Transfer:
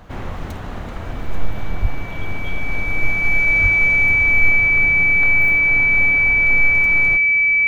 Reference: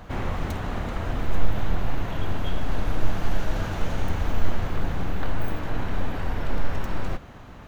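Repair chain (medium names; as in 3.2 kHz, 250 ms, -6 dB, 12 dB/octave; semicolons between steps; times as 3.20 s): band-stop 2.3 kHz, Q 30; 1.81–1.93 s: high-pass 140 Hz 24 dB/octave; 3.62–3.74 s: high-pass 140 Hz 24 dB/octave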